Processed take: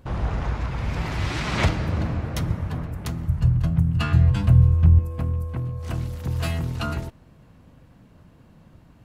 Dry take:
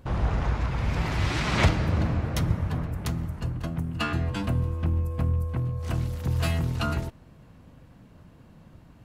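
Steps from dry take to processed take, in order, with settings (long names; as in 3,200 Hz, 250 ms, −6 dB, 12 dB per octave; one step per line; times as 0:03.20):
0:03.28–0:04.99: low shelf with overshoot 190 Hz +10 dB, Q 1.5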